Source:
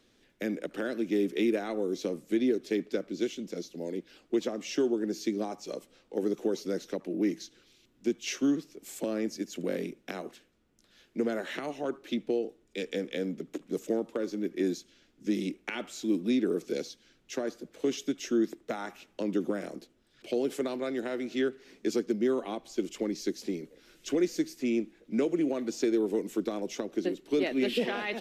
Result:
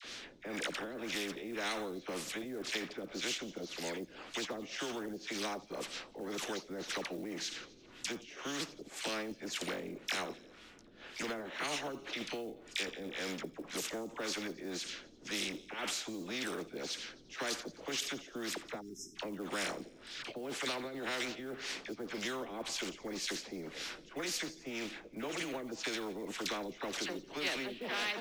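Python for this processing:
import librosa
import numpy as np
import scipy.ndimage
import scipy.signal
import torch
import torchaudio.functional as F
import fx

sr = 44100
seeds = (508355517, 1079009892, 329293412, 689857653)

p1 = scipy.signal.lfilter([1.0, -0.97], [1.0], x)
p2 = fx.spec_erase(p1, sr, start_s=18.78, length_s=0.37, low_hz=410.0, high_hz=5100.0)
p3 = fx.peak_eq(p2, sr, hz=300.0, db=2.5, octaves=0.27)
p4 = fx.over_compress(p3, sr, threshold_db=-56.0, ratio=-1.0)
p5 = p3 + F.gain(torch.from_numpy(p4), 0.5).numpy()
p6 = fx.dispersion(p5, sr, late='lows', ms=45.0, hz=1100.0)
p7 = fx.filter_lfo_lowpass(p6, sr, shape='sine', hz=1.9, low_hz=350.0, high_hz=3600.0, q=0.83)
p8 = fx.quant_float(p7, sr, bits=6)
p9 = p8 + fx.echo_wet_highpass(p8, sr, ms=87, feedback_pct=59, hz=4300.0, wet_db=-24, dry=0)
p10 = fx.spectral_comp(p9, sr, ratio=2.0)
y = F.gain(torch.from_numpy(p10), 12.0).numpy()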